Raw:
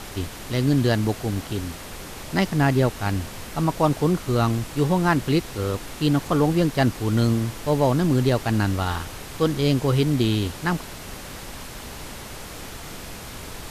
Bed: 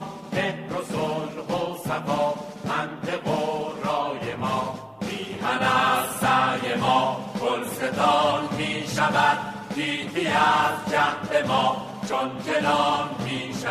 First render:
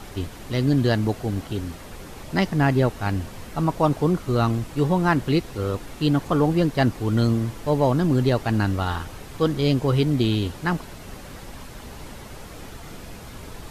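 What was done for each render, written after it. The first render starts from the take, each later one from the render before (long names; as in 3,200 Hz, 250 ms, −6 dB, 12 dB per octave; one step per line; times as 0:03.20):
broadband denoise 7 dB, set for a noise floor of −38 dBFS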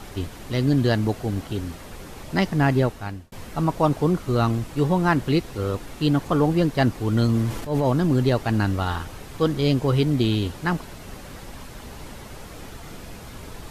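0:02.78–0:03.32: fade out
0:07.25–0:07.90: transient designer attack −10 dB, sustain +7 dB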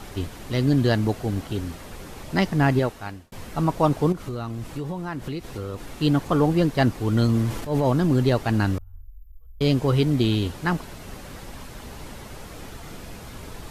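0:02.79–0:03.31: low-shelf EQ 230 Hz −6.5 dB
0:04.12–0:05.93: downward compressor, threshold −27 dBFS
0:08.78–0:09.61: inverse Chebyshev band-stop filter 140–9,500 Hz, stop band 50 dB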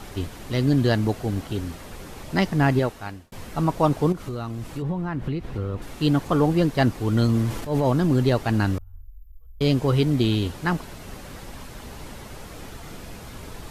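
0:04.82–0:05.82: bass and treble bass +6 dB, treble −12 dB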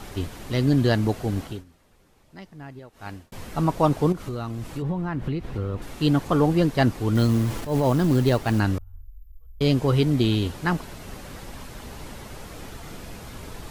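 0:01.43–0:03.13: duck −21 dB, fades 0.21 s
0:07.15–0:08.60: log-companded quantiser 6 bits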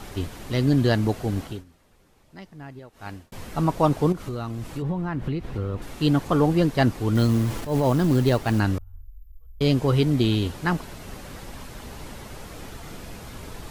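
no processing that can be heard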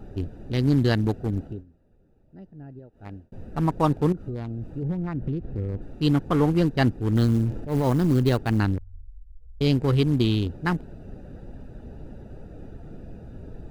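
adaptive Wiener filter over 41 samples
dynamic equaliser 620 Hz, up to −5 dB, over −40 dBFS, Q 2.9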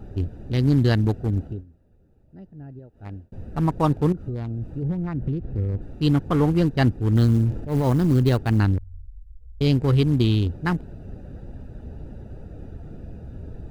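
parametric band 76 Hz +6 dB 1.7 octaves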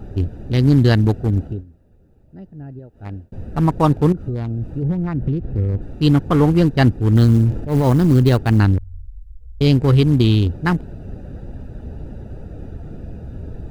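level +5.5 dB
brickwall limiter −2 dBFS, peak gain reduction 1 dB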